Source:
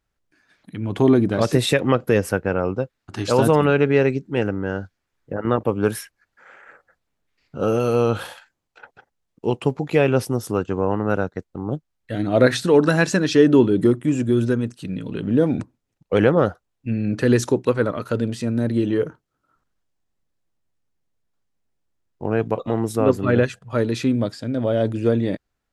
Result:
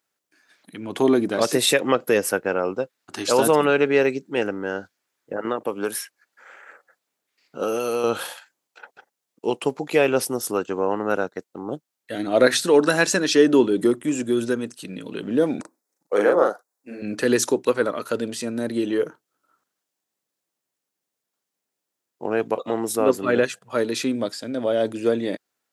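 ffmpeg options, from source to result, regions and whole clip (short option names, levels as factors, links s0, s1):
-filter_complex "[0:a]asettb=1/sr,asplit=3[s0][s1][s2];[s0]atrim=end=5.464[s3];[s1]atrim=start=5.46:end=8.04,asetpts=PTS-STARTPTS,afade=t=in:d=0.004:c=qsin,afade=t=out:st=2.576:d=0.004:c=qsin,highpass=45,lowshelf=f=64:g=-12,acrossover=split=1300|7800[s4][s5][s6];[s4]acompressor=threshold=0.1:ratio=4[s7];[s5]acompressor=threshold=0.0178:ratio=4[s8];[s6]acompressor=threshold=0.0112:ratio=4[s9];[s7][s8][s9]amix=inputs=3:normalize=0[s10];[s2]atrim=start=8.036[s11];[s3][s10]acrossfade=d=0.004:c1=hsin:c2=qsin[s12];[s12][s11]acrossfade=d=0.004:c1=qsin:c2=hsin,asettb=1/sr,asplit=3[s13][s14][s15];[s13]atrim=end=15.614[s16];[s14]atrim=start=15.61:end=17.02,asetpts=PTS-STARTPTS,afade=t=in:d=0.004:c=qsin,afade=t=out:st=1.406:d=0.004:c=qsin,highpass=370,equalizer=f=2900:t=o:w=0.77:g=-14,asplit=2[s17][s18];[s18]adelay=39,volume=0.794[s19];[s17][s19]amix=inputs=2:normalize=0,atrim=end_sample=62181[s20];[s15]atrim=start=17.016[s21];[s16][s20]acrossfade=d=0.004:c1=hsin:c2=qsin[s22];[s22][s21]acrossfade=d=0.004:c1=qsin:c2=hsin,highpass=290,highshelf=f=5200:g=10"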